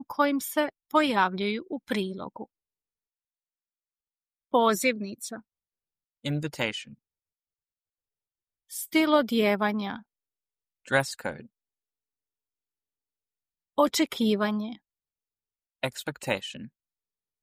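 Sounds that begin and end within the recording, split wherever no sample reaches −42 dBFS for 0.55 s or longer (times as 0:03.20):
0:04.53–0:05.40
0:06.25–0:06.93
0:08.71–0:10.00
0:10.86–0:11.45
0:13.78–0:14.76
0:15.83–0:16.66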